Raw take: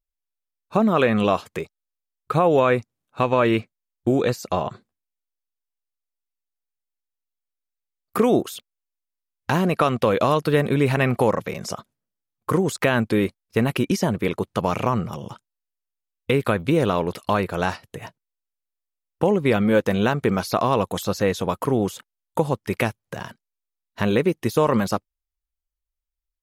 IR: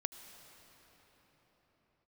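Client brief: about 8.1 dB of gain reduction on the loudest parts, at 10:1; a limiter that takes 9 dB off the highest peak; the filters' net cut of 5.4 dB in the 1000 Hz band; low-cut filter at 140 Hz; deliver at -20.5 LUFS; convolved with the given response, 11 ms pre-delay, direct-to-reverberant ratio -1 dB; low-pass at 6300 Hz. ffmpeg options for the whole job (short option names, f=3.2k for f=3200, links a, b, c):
-filter_complex "[0:a]highpass=140,lowpass=6.3k,equalizer=f=1k:t=o:g=-7,acompressor=threshold=-23dB:ratio=10,alimiter=limit=-18dB:level=0:latency=1,asplit=2[a][b];[1:a]atrim=start_sample=2205,adelay=11[c];[b][c]afir=irnorm=-1:irlink=0,volume=1.5dB[d];[a][d]amix=inputs=2:normalize=0,volume=8dB"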